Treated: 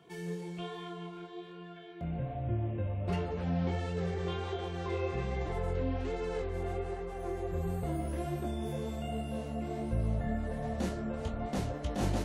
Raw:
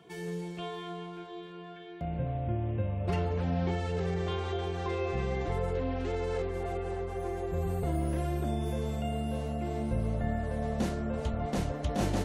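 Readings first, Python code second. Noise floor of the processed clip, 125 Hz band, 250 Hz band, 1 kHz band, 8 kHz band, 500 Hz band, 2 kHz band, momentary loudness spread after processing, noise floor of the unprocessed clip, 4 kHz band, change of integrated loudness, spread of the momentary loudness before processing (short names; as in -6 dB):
-47 dBFS, -2.5 dB, -2.0 dB, -3.0 dB, -2.5 dB, -3.0 dB, -2.5 dB, 8 LU, -45 dBFS, -2.5 dB, -2.5 dB, 8 LU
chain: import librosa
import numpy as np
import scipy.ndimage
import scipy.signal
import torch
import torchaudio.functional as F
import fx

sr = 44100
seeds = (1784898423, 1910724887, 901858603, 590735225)

y = fx.chorus_voices(x, sr, voices=2, hz=1.2, base_ms=20, depth_ms=3.6, mix_pct=35)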